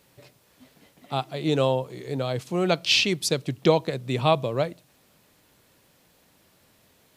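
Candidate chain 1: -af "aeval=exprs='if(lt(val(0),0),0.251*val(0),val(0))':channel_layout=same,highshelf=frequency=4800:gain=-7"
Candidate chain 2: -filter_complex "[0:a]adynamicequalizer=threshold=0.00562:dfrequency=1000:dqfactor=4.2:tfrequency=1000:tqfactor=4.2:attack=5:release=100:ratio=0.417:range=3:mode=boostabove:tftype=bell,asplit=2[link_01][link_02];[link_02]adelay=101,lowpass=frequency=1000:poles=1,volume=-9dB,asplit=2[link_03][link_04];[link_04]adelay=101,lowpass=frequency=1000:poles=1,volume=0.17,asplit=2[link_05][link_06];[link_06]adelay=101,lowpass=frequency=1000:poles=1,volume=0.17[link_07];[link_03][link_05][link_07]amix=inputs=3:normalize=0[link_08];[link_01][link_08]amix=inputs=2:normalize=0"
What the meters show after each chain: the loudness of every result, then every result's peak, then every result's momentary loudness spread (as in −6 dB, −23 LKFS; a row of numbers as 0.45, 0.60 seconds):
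−28.5, −24.0 LKFS; −5.5, −5.0 dBFS; 9, 10 LU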